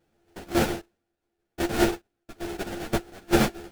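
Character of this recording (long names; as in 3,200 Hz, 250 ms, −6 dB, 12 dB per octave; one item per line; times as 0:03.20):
a buzz of ramps at a fixed pitch in blocks of 128 samples
sample-and-hold tremolo 2.5 Hz, depth 90%
aliases and images of a low sample rate 1,100 Hz, jitter 20%
a shimmering, thickened sound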